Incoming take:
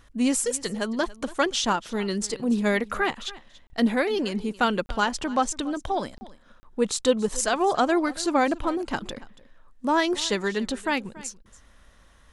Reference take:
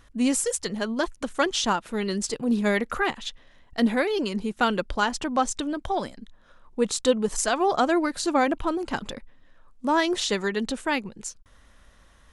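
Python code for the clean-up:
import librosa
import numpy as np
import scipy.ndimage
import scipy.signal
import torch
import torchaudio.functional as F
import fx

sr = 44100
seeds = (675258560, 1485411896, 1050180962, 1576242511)

y = fx.fix_interpolate(x, sr, at_s=(3.67, 4.86, 6.18, 6.6), length_ms=30.0)
y = fx.fix_echo_inverse(y, sr, delay_ms=283, level_db=-19.5)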